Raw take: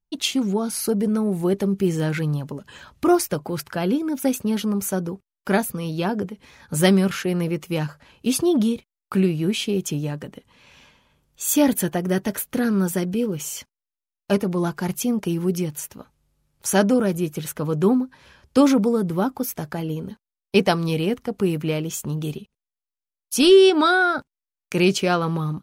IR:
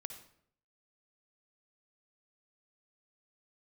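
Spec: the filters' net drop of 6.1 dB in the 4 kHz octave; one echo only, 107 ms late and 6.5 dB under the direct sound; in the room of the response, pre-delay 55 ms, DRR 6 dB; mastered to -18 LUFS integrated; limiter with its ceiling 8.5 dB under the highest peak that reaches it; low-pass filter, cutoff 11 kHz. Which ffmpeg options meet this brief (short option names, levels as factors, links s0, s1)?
-filter_complex "[0:a]lowpass=11000,equalizer=f=4000:t=o:g=-8.5,alimiter=limit=0.2:level=0:latency=1,aecho=1:1:107:0.473,asplit=2[s0][s1];[1:a]atrim=start_sample=2205,adelay=55[s2];[s1][s2]afir=irnorm=-1:irlink=0,volume=0.75[s3];[s0][s3]amix=inputs=2:normalize=0,volume=1.68"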